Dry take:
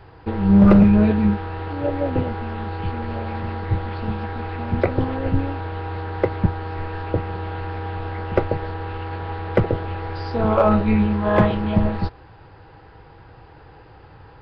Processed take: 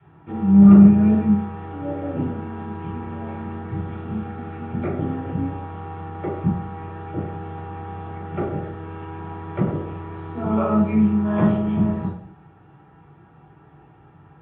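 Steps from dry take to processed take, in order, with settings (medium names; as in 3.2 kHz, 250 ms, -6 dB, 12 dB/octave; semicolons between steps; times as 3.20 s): steep low-pass 3.5 kHz 96 dB/octave; comb of notches 510 Hz; reverberation RT60 0.60 s, pre-delay 3 ms, DRR -7 dB; trim -17 dB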